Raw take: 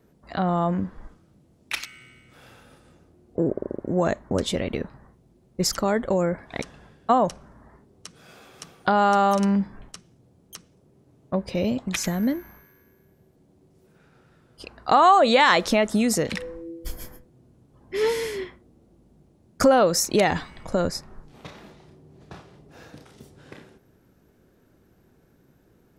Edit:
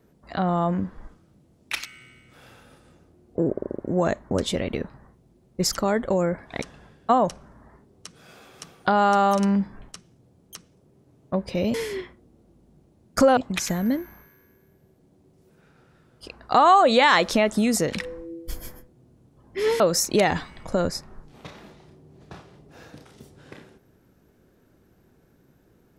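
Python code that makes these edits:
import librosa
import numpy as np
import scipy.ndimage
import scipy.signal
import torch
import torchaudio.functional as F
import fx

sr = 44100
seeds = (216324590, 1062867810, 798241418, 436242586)

y = fx.edit(x, sr, fx.move(start_s=18.17, length_s=1.63, to_s=11.74), tone=tone)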